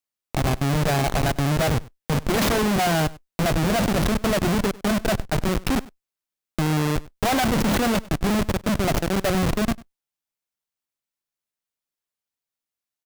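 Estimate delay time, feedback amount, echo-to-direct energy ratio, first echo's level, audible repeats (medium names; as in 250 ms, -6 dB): 98 ms, no regular repeats, -21.5 dB, -21.5 dB, 1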